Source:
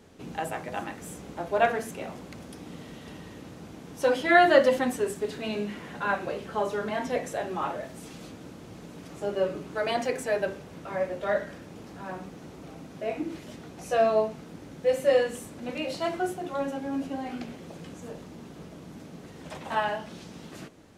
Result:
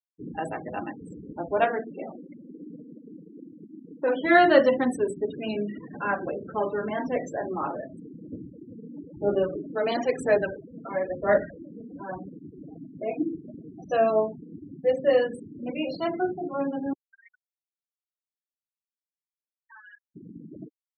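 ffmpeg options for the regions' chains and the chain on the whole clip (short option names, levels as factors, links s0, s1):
-filter_complex "[0:a]asettb=1/sr,asplit=3[s0][s1][s2];[s0]atrim=end=1.644[s3];[s1]atrim=start=1.64:end=4.23,asetpts=PTS-STARTPTS,afade=t=in:d=0.004:c=qsin,afade=t=out:st=2.586:d=0.004:c=qsin,asoftclip=type=hard:threshold=0.0944,highpass=190,lowpass=3200[s4];[s2]atrim=start=4.226[s5];[s3][s4]acrossfade=d=0.004:c1=hsin:c2=qsin[s6];[s6][s5]acrossfade=d=0.004:c1=qsin:c2=hsin,asettb=1/sr,asplit=3[s7][s8][s9];[s7]atrim=end=8.324[s10];[s8]atrim=start=8.32:end=12.19,asetpts=PTS-STARTPTS,afade=t=in:d=0.004:c=qsin,afade=t=out:st=3.866:d=0.004:c=qsin,aphaser=in_gain=1:out_gain=1:delay=4.5:decay=0.47:speed=1:type=sinusoidal,aecho=1:1:94:0.0708,atrim=end_sample=170667[s11];[s9]atrim=start=12.186[s12];[s10][s11]acrossfade=d=0.004:c1=hsin:c2=qsin[s13];[s13][s12]acrossfade=d=0.004:c1=qsin:c2=hsin,asettb=1/sr,asplit=3[s14][s15][s16];[s14]atrim=end=16.934[s17];[s15]atrim=start=16.93:end=20.16,asetpts=PTS-STARTPTS,afade=t=in:d=0.004:c=qsin,afade=t=out:st=3.226:d=0.004:c=qsin,highpass=f=1300:w=0.5412,highpass=f=1300:w=1.3066,acompressor=threshold=0.00891:ratio=16:attack=3.2:release=140:knee=1:detection=peak[s18];[s16]atrim=start=20.156[s19];[s17][s18]acrossfade=d=0.004:c1=hsin:c2=qsin[s20];[s20][s19]acrossfade=d=0.004:c1=qsin:c2=hsin,afftfilt=real='re*gte(hypot(re,im),0.0251)':imag='im*gte(hypot(re,im),0.0251)':win_size=1024:overlap=0.75,equalizer=f=300:t=o:w=0.72:g=5.5"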